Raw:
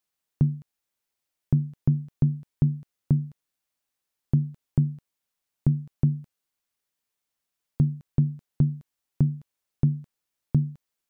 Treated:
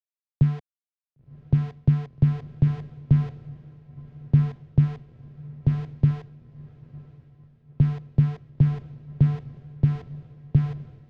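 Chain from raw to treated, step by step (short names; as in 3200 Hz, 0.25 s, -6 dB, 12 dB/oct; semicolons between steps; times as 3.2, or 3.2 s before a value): tracing distortion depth 0.14 ms; ten-band EQ 125 Hz +8 dB, 250 Hz -4 dB, 500 Hz +7 dB; compressor 6:1, threshold -17 dBFS, peak gain reduction 6.5 dB; sample gate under -33 dBFS; air absorption 190 m; diffused feedback echo 1.018 s, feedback 58%, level -10.5 dB; three-band expander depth 70%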